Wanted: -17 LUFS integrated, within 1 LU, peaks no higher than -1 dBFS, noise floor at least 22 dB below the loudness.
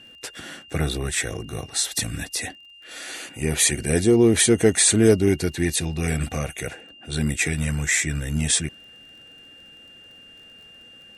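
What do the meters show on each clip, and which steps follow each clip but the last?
tick rate 27 per s; steady tone 2.8 kHz; tone level -45 dBFS; loudness -21.5 LUFS; peak level -3.5 dBFS; loudness target -17.0 LUFS
-> de-click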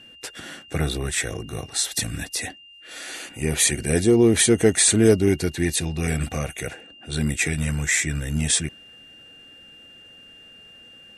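tick rate 0 per s; steady tone 2.8 kHz; tone level -45 dBFS
-> band-stop 2.8 kHz, Q 30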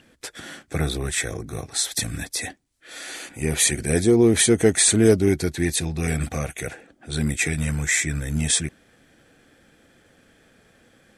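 steady tone not found; loudness -21.5 LUFS; peak level -3.5 dBFS; loudness target -17.0 LUFS
-> trim +4.5 dB; peak limiter -1 dBFS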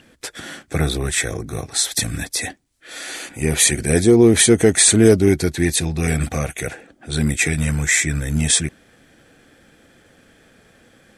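loudness -17.0 LUFS; peak level -1.0 dBFS; noise floor -54 dBFS

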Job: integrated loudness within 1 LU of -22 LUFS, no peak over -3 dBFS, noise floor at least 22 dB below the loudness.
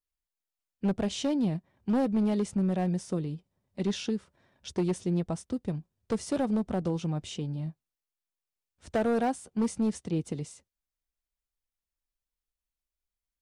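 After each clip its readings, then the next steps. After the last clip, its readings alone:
clipped samples 1.9%; clipping level -22.0 dBFS; loudness -31.0 LUFS; peak level -22.0 dBFS; loudness target -22.0 LUFS
-> clip repair -22 dBFS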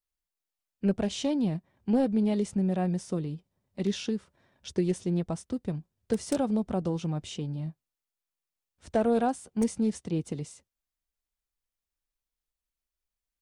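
clipped samples 0.0%; loudness -30.0 LUFS; peak level -13.0 dBFS; loudness target -22.0 LUFS
-> trim +8 dB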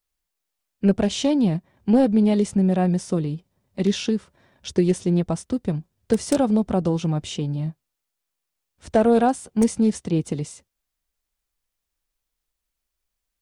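loudness -22.0 LUFS; peak level -5.0 dBFS; noise floor -82 dBFS

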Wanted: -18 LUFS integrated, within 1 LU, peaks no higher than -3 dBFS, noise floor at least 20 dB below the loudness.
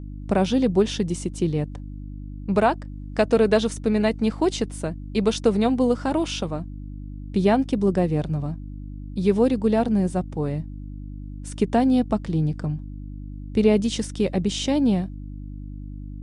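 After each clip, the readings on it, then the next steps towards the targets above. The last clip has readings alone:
hum 50 Hz; highest harmonic 300 Hz; hum level -33 dBFS; loudness -23.0 LUFS; peak level -6.0 dBFS; loudness target -18.0 LUFS
-> de-hum 50 Hz, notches 6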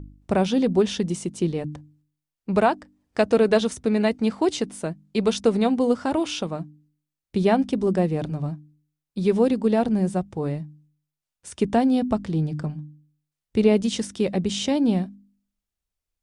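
hum not found; loudness -23.5 LUFS; peak level -5.5 dBFS; loudness target -18.0 LUFS
-> trim +5.5 dB; peak limiter -3 dBFS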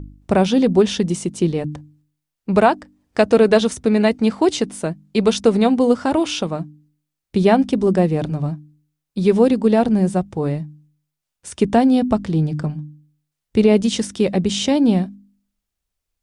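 loudness -18.0 LUFS; peak level -3.0 dBFS; noise floor -82 dBFS

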